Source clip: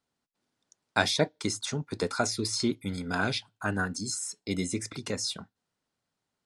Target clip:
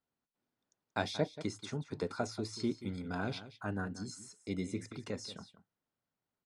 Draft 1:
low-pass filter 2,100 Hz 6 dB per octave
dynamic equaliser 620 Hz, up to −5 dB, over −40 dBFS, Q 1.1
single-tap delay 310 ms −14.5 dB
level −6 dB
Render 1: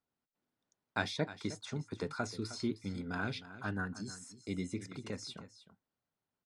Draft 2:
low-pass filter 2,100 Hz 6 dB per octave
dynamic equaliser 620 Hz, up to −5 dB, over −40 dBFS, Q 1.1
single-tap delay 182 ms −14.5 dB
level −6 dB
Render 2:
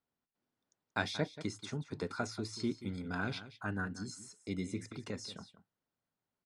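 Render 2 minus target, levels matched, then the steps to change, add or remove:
2,000 Hz band +4.0 dB
change: dynamic equaliser 1,600 Hz, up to −5 dB, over −40 dBFS, Q 1.1

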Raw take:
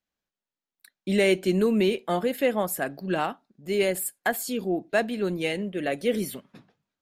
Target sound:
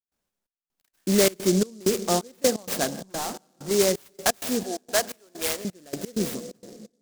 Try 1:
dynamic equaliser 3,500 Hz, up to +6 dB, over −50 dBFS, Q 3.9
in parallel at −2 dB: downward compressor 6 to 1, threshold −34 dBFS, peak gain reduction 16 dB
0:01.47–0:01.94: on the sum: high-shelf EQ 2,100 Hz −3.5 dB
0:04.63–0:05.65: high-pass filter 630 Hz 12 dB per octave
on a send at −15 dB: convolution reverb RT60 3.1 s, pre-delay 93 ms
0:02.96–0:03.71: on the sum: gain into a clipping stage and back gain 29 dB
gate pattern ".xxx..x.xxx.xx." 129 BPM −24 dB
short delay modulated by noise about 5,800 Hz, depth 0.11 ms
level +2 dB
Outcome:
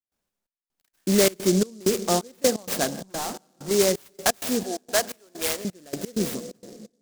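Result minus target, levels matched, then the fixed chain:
downward compressor: peak gain reduction −6 dB
dynamic equaliser 3,500 Hz, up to +6 dB, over −50 dBFS, Q 3.9
in parallel at −2 dB: downward compressor 6 to 1, threshold −41 dBFS, peak gain reduction 22 dB
0:01.47–0:01.94: on the sum: high-shelf EQ 2,100 Hz −3.5 dB
0:04.63–0:05.65: high-pass filter 630 Hz 12 dB per octave
on a send at −15 dB: convolution reverb RT60 3.1 s, pre-delay 93 ms
0:02.96–0:03.71: on the sum: gain into a clipping stage and back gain 29 dB
gate pattern ".xxx..x.xxx.xx." 129 BPM −24 dB
short delay modulated by noise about 5,800 Hz, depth 0.11 ms
level +2 dB

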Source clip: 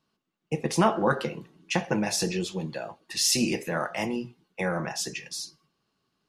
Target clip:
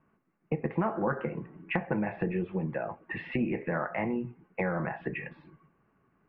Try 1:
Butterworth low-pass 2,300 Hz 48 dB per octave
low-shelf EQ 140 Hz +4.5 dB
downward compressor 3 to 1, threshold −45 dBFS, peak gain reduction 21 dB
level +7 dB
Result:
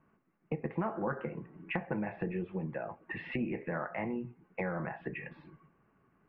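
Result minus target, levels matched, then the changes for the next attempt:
downward compressor: peak gain reduction +5 dB
change: downward compressor 3 to 1, threshold −37.5 dBFS, peak gain reduction 16 dB

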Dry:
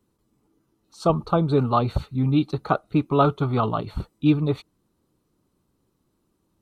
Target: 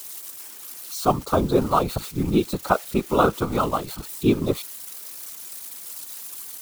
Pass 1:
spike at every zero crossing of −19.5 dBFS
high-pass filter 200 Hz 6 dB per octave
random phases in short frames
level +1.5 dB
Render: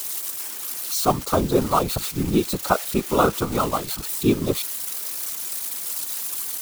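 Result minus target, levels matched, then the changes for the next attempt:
spike at every zero crossing: distortion +8 dB
change: spike at every zero crossing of −27.5 dBFS

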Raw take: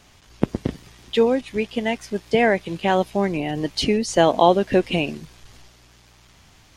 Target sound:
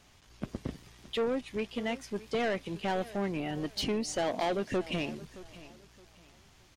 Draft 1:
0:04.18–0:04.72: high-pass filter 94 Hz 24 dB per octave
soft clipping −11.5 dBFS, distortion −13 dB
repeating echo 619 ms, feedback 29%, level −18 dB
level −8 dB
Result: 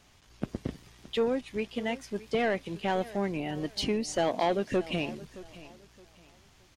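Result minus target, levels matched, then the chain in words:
soft clipping: distortion −5 dB
0:04.18–0:04.72: high-pass filter 94 Hz 24 dB per octave
soft clipping −17.5 dBFS, distortion −8 dB
repeating echo 619 ms, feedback 29%, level −18 dB
level −8 dB

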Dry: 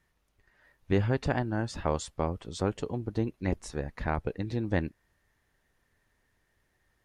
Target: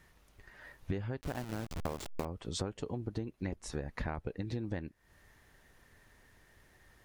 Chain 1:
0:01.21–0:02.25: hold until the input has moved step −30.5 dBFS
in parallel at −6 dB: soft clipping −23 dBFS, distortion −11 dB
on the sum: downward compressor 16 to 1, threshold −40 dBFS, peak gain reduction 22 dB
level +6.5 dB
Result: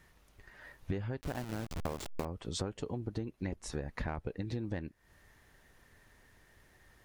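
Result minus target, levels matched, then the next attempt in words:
soft clipping: distortion +13 dB
0:01.21–0:02.25: hold until the input has moved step −30.5 dBFS
in parallel at −6 dB: soft clipping −13 dBFS, distortion −25 dB
on the sum: downward compressor 16 to 1, threshold −40 dBFS, peak gain reduction 23.5 dB
level +6.5 dB

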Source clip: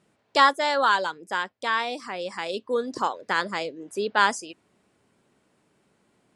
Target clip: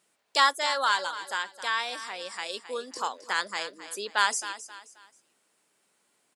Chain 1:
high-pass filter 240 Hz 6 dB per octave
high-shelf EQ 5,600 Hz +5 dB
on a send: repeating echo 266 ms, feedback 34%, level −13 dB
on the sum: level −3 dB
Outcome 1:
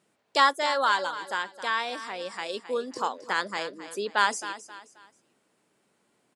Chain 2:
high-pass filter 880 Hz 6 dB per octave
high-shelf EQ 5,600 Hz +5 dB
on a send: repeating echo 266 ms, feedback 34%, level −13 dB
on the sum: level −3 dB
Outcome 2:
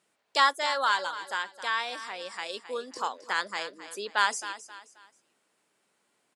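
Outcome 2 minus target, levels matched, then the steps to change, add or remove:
8,000 Hz band −4.0 dB
change: high-shelf EQ 5,600 Hz +12.5 dB

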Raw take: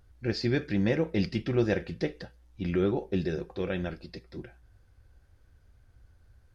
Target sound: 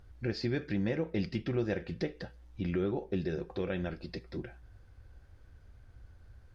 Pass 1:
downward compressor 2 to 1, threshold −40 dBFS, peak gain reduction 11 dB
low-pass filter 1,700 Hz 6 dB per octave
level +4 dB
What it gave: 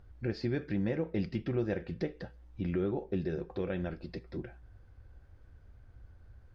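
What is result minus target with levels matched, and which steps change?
4,000 Hz band −5.5 dB
change: low-pass filter 4,700 Hz 6 dB per octave

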